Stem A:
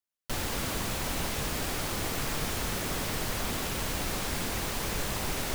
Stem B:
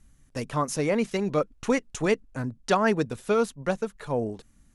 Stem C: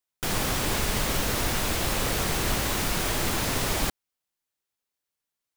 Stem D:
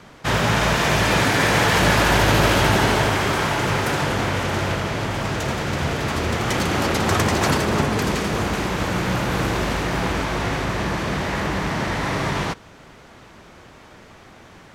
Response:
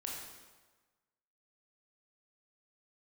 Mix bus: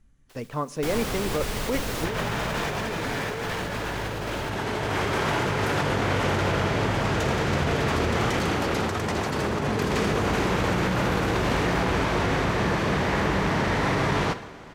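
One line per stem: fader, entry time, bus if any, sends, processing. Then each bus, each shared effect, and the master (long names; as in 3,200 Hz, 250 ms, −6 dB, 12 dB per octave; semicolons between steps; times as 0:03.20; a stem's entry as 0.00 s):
−18.0 dB, 0.00 s, no send, gate on every frequency bin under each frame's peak −20 dB weak
−5.5 dB, 0.00 s, send −18.5 dB, high-shelf EQ 7,700 Hz −10 dB
−4.5 dB, 0.60 s, no send, no processing
−4.5 dB, 1.80 s, send −7.5 dB, no processing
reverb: on, RT60 1.3 s, pre-delay 17 ms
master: parametric band 440 Hz +3.5 dB 0.32 octaves; compressor whose output falls as the input rises −25 dBFS, ratio −1; high-shelf EQ 5,200 Hz −5.5 dB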